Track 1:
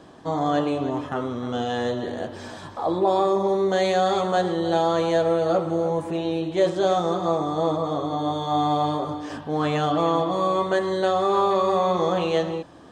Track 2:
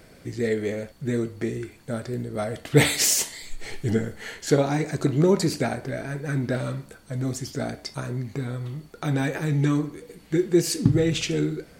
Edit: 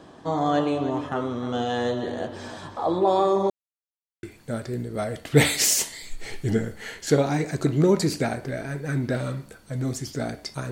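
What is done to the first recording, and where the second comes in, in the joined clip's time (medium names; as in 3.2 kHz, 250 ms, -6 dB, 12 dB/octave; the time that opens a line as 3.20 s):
track 1
3.50–4.23 s: mute
4.23 s: go over to track 2 from 1.63 s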